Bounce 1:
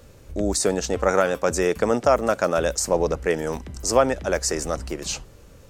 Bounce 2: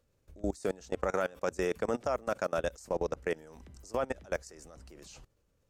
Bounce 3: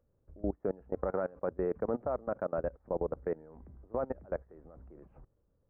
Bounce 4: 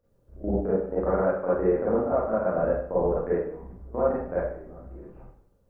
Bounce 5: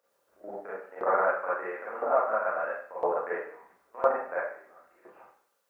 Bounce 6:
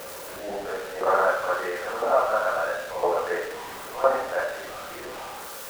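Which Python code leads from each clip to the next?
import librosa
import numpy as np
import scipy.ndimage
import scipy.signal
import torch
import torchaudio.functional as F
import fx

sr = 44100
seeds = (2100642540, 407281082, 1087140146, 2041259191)

y1 = fx.level_steps(x, sr, step_db=22)
y1 = y1 * librosa.db_to_amplitude(-7.5)
y2 = scipy.ndimage.gaussian_filter1d(y1, 6.9, mode='constant')
y3 = fx.rev_schroeder(y2, sr, rt60_s=0.6, comb_ms=32, drr_db=-9.5)
y4 = fx.filter_lfo_highpass(y3, sr, shape='saw_up', hz=0.99, low_hz=870.0, high_hz=2100.0, q=0.85)
y4 = y4 * librosa.db_to_amplitude(7.5)
y5 = y4 + 0.5 * 10.0 ** (-35.0 / 20.0) * np.sign(y4)
y5 = y5 * librosa.db_to_amplitude(3.0)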